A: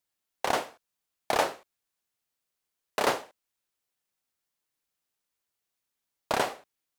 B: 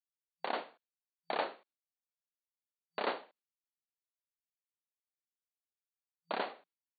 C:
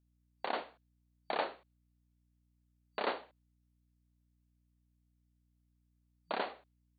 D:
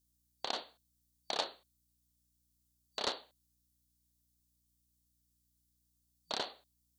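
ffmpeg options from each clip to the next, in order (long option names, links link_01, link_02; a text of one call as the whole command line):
ffmpeg -i in.wav -af "agate=range=-33dB:threshold=-54dB:ratio=3:detection=peak,afftfilt=real='re*between(b*sr/4096,170,4600)':imag='im*between(b*sr/4096,170,4600)':win_size=4096:overlap=0.75,volume=-9dB" out.wav
ffmpeg -i in.wav -af "aeval=exprs='val(0)+0.000224*(sin(2*PI*60*n/s)+sin(2*PI*2*60*n/s)/2+sin(2*PI*3*60*n/s)/3+sin(2*PI*4*60*n/s)/4+sin(2*PI*5*60*n/s)/5)':channel_layout=same" out.wav
ffmpeg -i in.wav -af "aeval=exprs='0.1*(cos(1*acos(clip(val(0)/0.1,-1,1)))-cos(1*PI/2))+0.0178*(cos(3*acos(clip(val(0)/0.1,-1,1)))-cos(3*PI/2))':channel_layout=same,aexciter=amount=8.9:drive=2.5:freq=3400" out.wav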